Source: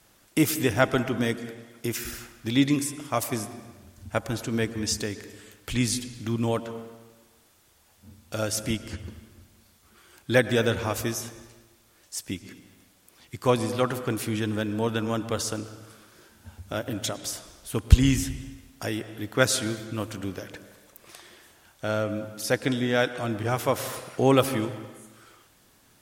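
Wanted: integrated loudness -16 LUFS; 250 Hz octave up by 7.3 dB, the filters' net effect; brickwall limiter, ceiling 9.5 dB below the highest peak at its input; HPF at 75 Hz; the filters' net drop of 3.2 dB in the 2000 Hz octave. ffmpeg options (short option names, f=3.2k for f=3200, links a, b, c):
-af "highpass=75,equalizer=f=250:t=o:g=8.5,equalizer=f=2k:t=o:g=-4.5,volume=10dB,alimiter=limit=-2.5dB:level=0:latency=1"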